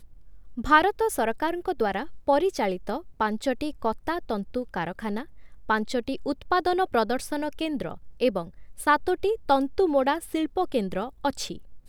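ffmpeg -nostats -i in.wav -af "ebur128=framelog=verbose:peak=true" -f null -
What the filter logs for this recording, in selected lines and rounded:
Integrated loudness:
  I:         -26.6 LUFS
  Threshold: -36.9 LUFS
Loudness range:
  LRA:         4.2 LU
  Threshold: -47.2 LUFS
  LRA low:   -29.6 LUFS
  LRA high:  -25.4 LUFS
True peak:
  Peak:       -4.7 dBFS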